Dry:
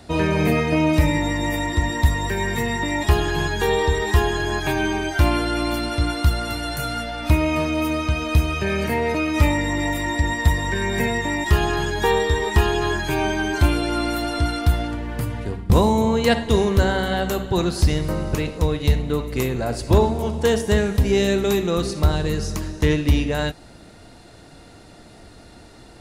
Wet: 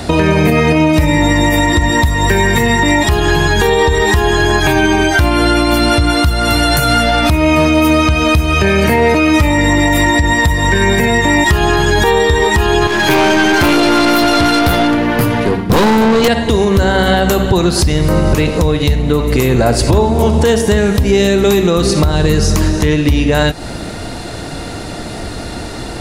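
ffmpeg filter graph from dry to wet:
-filter_complex "[0:a]asettb=1/sr,asplit=3[s0][s1][s2];[s0]atrim=end=12.874[s3];[s1]atrim=start=12.87:end=16.28,asetpts=PTS-STARTPTS,afade=t=in:d=0.004:c=qsin,afade=t=out:st=3.406:d=0.004:c=qsin,highpass=170,equalizer=f=8100:t=o:w=0.47:g=-8,aeval=exprs='(tanh(20*val(0)+0.3)-tanh(0.3))/20':c=same[s4];[s2]atrim=start=16.276[s5];[s3][s4]acrossfade=d=0.004:c1=hsin:c2=qsin[s6];[s6][s5]acrossfade=d=0.004:c1=qsin:c2=hsin,acompressor=threshold=0.0398:ratio=6,alimiter=level_in=12.6:limit=0.891:release=50:level=0:latency=1,volume=0.891"

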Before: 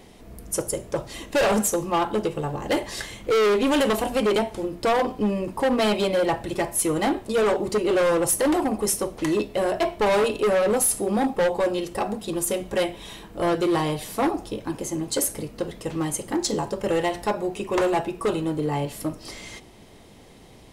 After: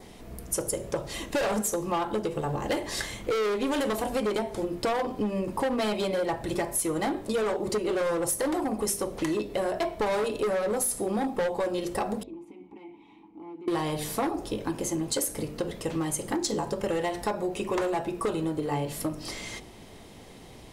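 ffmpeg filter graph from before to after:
-filter_complex "[0:a]asettb=1/sr,asplit=3[s0][s1][s2];[s0]atrim=end=12.234[s3];[s1]atrim=start=12.23:end=13.68,asetpts=PTS-STARTPTS,afade=t=in:d=0.004:c=qsin,afade=t=out:st=1.446:d=0.004:c=qsin,highshelf=f=2500:g=-9.5,acompressor=threshold=0.0282:ratio=4:attack=3.2:release=140:knee=1:detection=peak,asplit=3[s4][s5][s6];[s4]bandpass=f=300:t=q:w=8,volume=1[s7];[s5]bandpass=f=870:t=q:w=8,volume=0.501[s8];[s6]bandpass=f=2240:t=q:w=8,volume=0.355[s9];[s7][s8][s9]amix=inputs=3:normalize=0[s10];[s2]atrim=start=13.676[s11];[s3][s10]acrossfade=d=0.004:c1=hsin:c2=qsin[s12];[s12][s11]acrossfade=d=0.004:c1=qsin:c2=hsin,bandreject=f=50.11:t=h:w=4,bandreject=f=100.22:t=h:w=4,bandreject=f=150.33:t=h:w=4,bandreject=f=200.44:t=h:w=4,bandreject=f=250.55:t=h:w=4,bandreject=f=300.66:t=h:w=4,bandreject=f=350.77:t=h:w=4,bandreject=f=400.88:t=h:w=4,bandreject=f=450.99:t=h:w=4,bandreject=f=501.1:t=h:w=4,bandreject=f=551.21:t=h:w=4,bandreject=f=601.32:t=h:w=4,bandreject=f=651.43:t=h:w=4,adynamicequalizer=threshold=0.00355:dfrequency=2800:dqfactor=3.8:tfrequency=2800:tqfactor=3.8:attack=5:release=100:ratio=0.375:range=3:mode=cutabove:tftype=bell,acompressor=threshold=0.0447:ratio=6,volume=1.19"

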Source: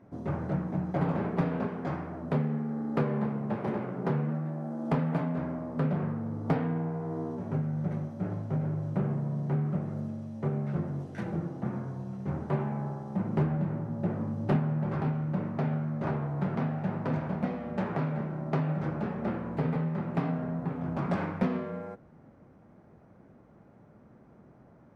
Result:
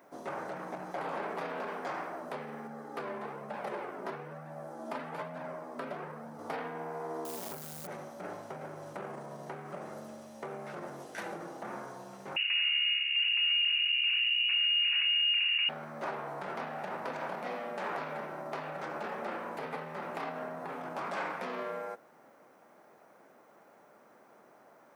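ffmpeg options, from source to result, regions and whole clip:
-filter_complex "[0:a]asettb=1/sr,asplit=3[s0][s1][s2];[s0]atrim=end=2.674[s3];[s1]atrim=start=2.67:end=6.39,asetpts=PTS-STARTPTS,afade=t=in:d=0.004:c=qsin,afade=t=out:st=3.716:d=0.004:c=qsin,lowshelf=f=110:t=q:w=3:g=-10.5,flanger=delay=1.1:depth=2.2:regen=-33:speed=1.1:shape=triangular[s4];[s2]atrim=start=6.386[s5];[s3][s4]acrossfade=d=0.004:c1=hsin:c2=qsin[s6];[s6][s5]acrossfade=d=0.004:c1=qsin:c2=hsin,asettb=1/sr,asplit=3[s7][s8][s9];[s7]atrim=end=7.254[s10];[s8]atrim=start=7.25:end=7.87,asetpts=PTS-STARTPTS,afade=t=in:d=0.004:c=qsin,afade=t=out:st=0.616:d=0.004:c=qsin,lowshelf=f=130:g=10.5,acrusher=bits=9:dc=4:mix=0:aa=0.000001[s11];[s9]atrim=start=7.866[s12];[s10][s11]acrossfade=d=0.004:c1=hsin:c2=qsin[s13];[s13][s12]acrossfade=d=0.004:c1=qsin:c2=hsin,asettb=1/sr,asplit=3[s14][s15][s16];[s14]atrim=end=12.364[s17];[s15]atrim=start=12.36:end=15.69,asetpts=PTS-STARTPTS,afade=t=in:d=0.004:c=qsin,afade=t=out:st=3.326:d=0.004:c=qsin,highshelf=f=2000:g=-11.5,lowpass=f=2600:t=q:w=0.5098,lowpass=f=2600:t=q:w=0.6013,lowpass=f=2600:t=q:w=0.9,lowpass=f=2600:t=q:w=2.563,afreqshift=-3000[s18];[s16]atrim=start=15.686[s19];[s17][s18]acrossfade=d=0.004:c1=hsin:c2=qsin[s20];[s20][s19]acrossfade=d=0.004:c1=qsin:c2=hsin,aemphasis=mode=production:type=50kf,alimiter=level_in=1.5:limit=0.0631:level=0:latency=1:release=16,volume=0.668,highpass=590,volume=1.78"

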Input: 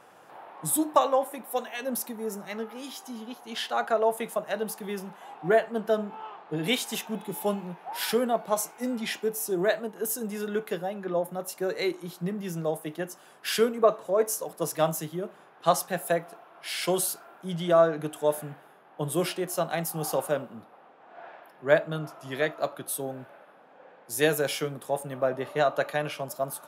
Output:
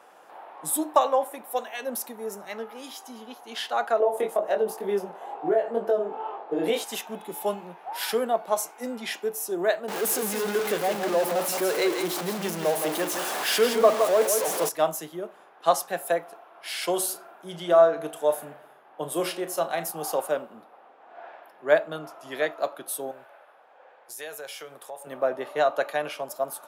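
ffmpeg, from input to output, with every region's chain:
-filter_complex "[0:a]asettb=1/sr,asplit=3[s0][s1][s2];[s0]atrim=end=4.004[s3];[s1]atrim=start=4:end=6.84,asetpts=PTS-STARTPTS,afade=t=in:d=0.004:c=qsin,afade=t=out:st=2.836:d=0.004:c=qsin,equalizer=f=450:t=o:w=2.2:g=13.5,acompressor=threshold=0.158:ratio=10:attack=3.2:release=140:knee=1:detection=peak,flanger=delay=20:depth=3.4:speed=2.1[s4];[s2]atrim=start=6.836[s5];[s3][s4]acrossfade=d=0.004:c1=hsin:c2=qsin[s6];[s6][s5]acrossfade=d=0.004:c1=qsin:c2=hsin,asettb=1/sr,asplit=3[s7][s8][s9];[s7]atrim=end=9.884[s10];[s8]atrim=start=9.88:end=14.69,asetpts=PTS-STARTPTS,afade=t=in:d=0.004:c=qsin,afade=t=out:st=4.806:d=0.004:c=qsin,aeval=exprs='val(0)+0.5*0.0501*sgn(val(0))':c=same,aecho=1:1:167:0.473,atrim=end_sample=212121[s11];[s9]atrim=start=14.686[s12];[s10][s11]acrossfade=d=0.004:c1=hsin:c2=qsin[s13];[s13][s12]acrossfade=d=0.004:c1=qsin:c2=hsin,asettb=1/sr,asplit=3[s14][s15][s16];[s14]atrim=end=16.924[s17];[s15]atrim=start=16.92:end=19.91,asetpts=PTS-STARTPTS,afade=t=in:d=0.004:c=qsin,afade=t=out:st=2.986:d=0.004:c=qsin,asplit=2[s18][s19];[s19]adelay=35,volume=0.266[s20];[s18][s20]amix=inputs=2:normalize=0,atrim=end_sample=131859,asplit=2[s21][s22];[s22]adelay=86,lowpass=f=1700:p=1,volume=0.158,asplit=2[s23][s24];[s24]adelay=86,lowpass=f=1700:p=1,volume=0.51,asplit=2[s25][s26];[s26]adelay=86,lowpass=f=1700:p=1,volume=0.51,asplit=2[s27][s28];[s28]adelay=86,lowpass=f=1700:p=1,volume=0.51,asplit=2[s29][s30];[s30]adelay=86,lowpass=f=1700:p=1,volume=0.51[s31];[s21][s23][s25][s27][s29][s31]amix=inputs=6:normalize=0,atrim=end_sample=131859[s32];[s16]atrim=start=19.906[s33];[s17][s32]acrossfade=d=0.004:c1=hsin:c2=qsin[s34];[s34][s33]acrossfade=d=0.004:c1=qsin:c2=hsin,asettb=1/sr,asplit=3[s35][s36][s37];[s35]atrim=end=23.114[s38];[s36]atrim=start=23.11:end=25.07,asetpts=PTS-STARTPTS,afade=t=in:d=0.004:c=qsin,afade=t=out:st=1.956:d=0.004:c=qsin,equalizer=f=230:t=o:w=1.4:g=-13.5,acompressor=threshold=0.0126:ratio=3:attack=3.2:release=140:knee=1:detection=peak[s39];[s37]atrim=start=25.066[s40];[s38][s39]acrossfade=d=0.004:c1=hsin:c2=qsin[s41];[s41][s40]acrossfade=d=0.004:c1=qsin:c2=hsin,highpass=290,equalizer=f=740:w=1.5:g=2.5"

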